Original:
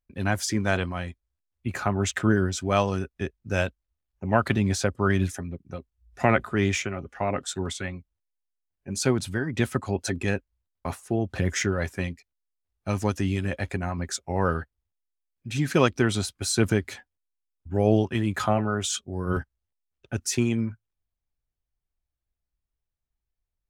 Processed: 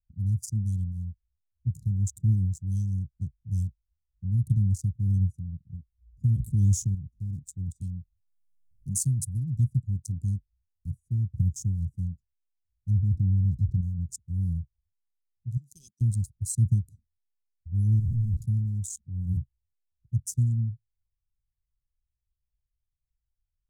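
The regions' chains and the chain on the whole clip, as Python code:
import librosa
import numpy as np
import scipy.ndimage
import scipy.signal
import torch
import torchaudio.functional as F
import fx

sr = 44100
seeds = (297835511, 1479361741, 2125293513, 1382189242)

y = fx.chain(x, sr, fx.peak_eq(hz=510.0, db=15.0, octaves=0.22),
    fx.env_flatten(amount_pct=50), at=(6.35, 6.95))
y = fx.chain(y, sr, fx.high_shelf(hz=4100.0, db=10.5),
    fx.band_squash(depth_pct=70), at=(7.81, 9.57))
y = fx.chain(y, sr, fx.brickwall_lowpass(high_hz=2200.0),
    fx.env_flatten(amount_pct=70), at=(12.9, 13.81))
y = fx.chain(y, sr, fx.highpass(hz=1100.0, slope=12),
    fx.comb(ms=5.4, depth=0.52), at=(15.57, 16.01))
y = fx.chain(y, sr, fx.clip_1bit(),
    fx.lowpass(hz=1500.0, slope=24), at=(17.99, 18.42))
y = fx.wiener(y, sr, points=41)
y = scipy.signal.sosfilt(scipy.signal.cheby2(4, 80, [640.0, 2000.0], 'bandstop', fs=sr, output='sos'), y)
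y = fx.dynamic_eq(y, sr, hz=130.0, q=2.9, threshold_db=-45.0, ratio=4.0, max_db=6)
y = F.gain(torch.from_numpy(y), 2.0).numpy()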